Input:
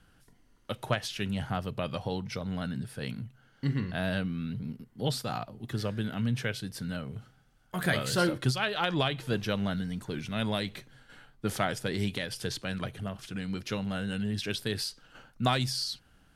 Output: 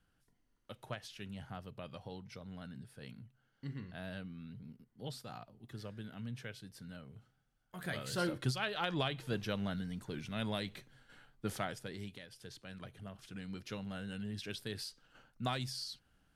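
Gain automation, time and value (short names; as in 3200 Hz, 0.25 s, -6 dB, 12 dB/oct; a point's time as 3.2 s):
7.77 s -14 dB
8.36 s -7 dB
11.46 s -7 dB
12.29 s -18.5 dB
13.32 s -10 dB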